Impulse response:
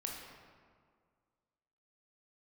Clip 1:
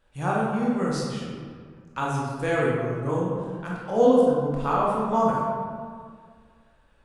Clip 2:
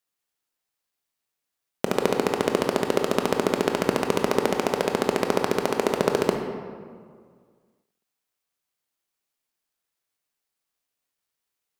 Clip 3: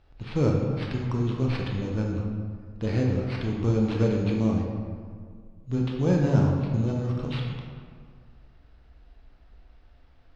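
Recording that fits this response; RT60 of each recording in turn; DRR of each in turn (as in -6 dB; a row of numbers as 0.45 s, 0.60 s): 3; 1.9 s, 1.9 s, 1.9 s; -5.0 dB, 3.0 dB, -1.0 dB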